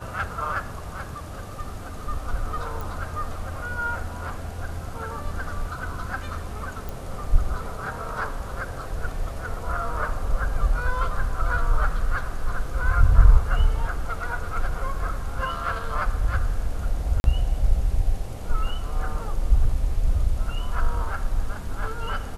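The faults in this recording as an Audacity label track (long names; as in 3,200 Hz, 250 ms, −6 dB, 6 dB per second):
2.810000	2.810000	click
6.890000	6.890000	click
17.200000	17.240000	drop-out 41 ms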